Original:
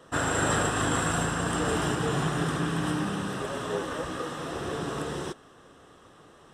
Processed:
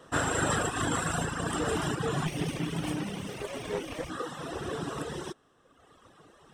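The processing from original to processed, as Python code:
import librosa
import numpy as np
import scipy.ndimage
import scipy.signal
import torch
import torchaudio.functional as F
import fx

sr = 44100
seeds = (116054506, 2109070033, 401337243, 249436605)

y = fx.lower_of_two(x, sr, delay_ms=0.33, at=(2.26, 4.1))
y = fx.dereverb_blind(y, sr, rt60_s=1.4)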